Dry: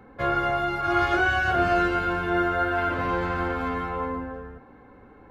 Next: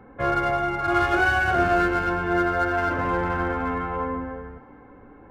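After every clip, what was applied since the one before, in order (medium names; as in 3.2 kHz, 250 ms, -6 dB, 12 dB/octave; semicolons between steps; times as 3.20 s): local Wiener filter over 9 samples; reverberation RT60 2.5 s, pre-delay 3 ms, DRR 11 dB; trim +2 dB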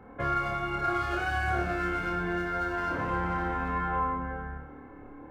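compression 4:1, threshold -26 dBFS, peak gain reduction 9 dB; flutter echo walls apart 4.8 m, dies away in 0.51 s; trim -3 dB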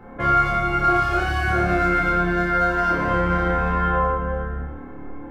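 simulated room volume 76 m³, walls mixed, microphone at 0.84 m; trim +5 dB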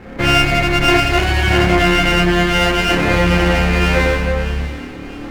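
comb filter that takes the minimum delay 0.44 ms; feedback echo behind a high-pass 645 ms, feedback 45%, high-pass 2.1 kHz, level -13 dB; trim +8.5 dB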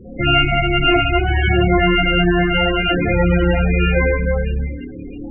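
loudest bins only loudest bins 16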